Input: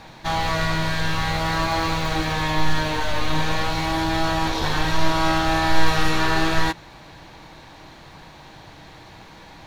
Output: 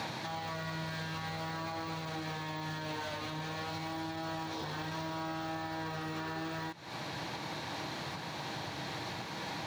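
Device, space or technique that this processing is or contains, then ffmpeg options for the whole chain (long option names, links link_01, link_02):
broadcast voice chain: -af "highpass=frequency=100:width=0.5412,highpass=frequency=100:width=1.3066,deesser=0.85,acompressor=threshold=-36dB:ratio=4,equalizer=frequency=4900:width_type=o:width=0.77:gain=2.5,alimiter=level_in=13dB:limit=-24dB:level=0:latency=1:release=406,volume=-13dB,volume=7dB"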